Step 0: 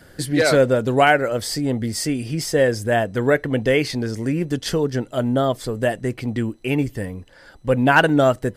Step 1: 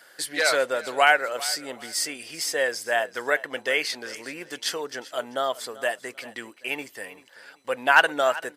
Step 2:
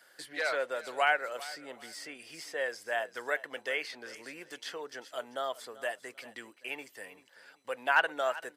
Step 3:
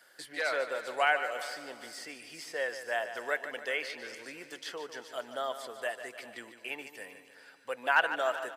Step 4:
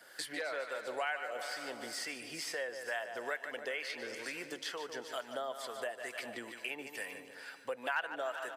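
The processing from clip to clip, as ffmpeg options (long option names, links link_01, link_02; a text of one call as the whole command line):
ffmpeg -i in.wav -af "highpass=840,aecho=1:1:390|780:0.126|0.0352" out.wav
ffmpeg -i in.wav -filter_complex "[0:a]acrossover=split=330|3400[link_01][link_02][link_03];[link_01]alimiter=level_in=17.5dB:limit=-24dB:level=0:latency=1:release=310,volume=-17.5dB[link_04];[link_03]acompressor=threshold=-40dB:ratio=6[link_05];[link_04][link_02][link_05]amix=inputs=3:normalize=0,volume=-8.5dB" out.wav
ffmpeg -i in.wav -af "aecho=1:1:148|296|444|592|740|888:0.282|0.149|0.0792|0.042|0.0222|0.0118" out.wav
ffmpeg -i in.wav -filter_complex "[0:a]acompressor=threshold=-44dB:ratio=3,acrossover=split=790[link_01][link_02];[link_01]aeval=exprs='val(0)*(1-0.5/2+0.5/2*cos(2*PI*2.2*n/s))':channel_layout=same[link_03];[link_02]aeval=exprs='val(0)*(1-0.5/2-0.5/2*cos(2*PI*2.2*n/s))':channel_layout=same[link_04];[link_03][link_04]amix=inputs=2:normalize=0,volume=7.5dB" out.wav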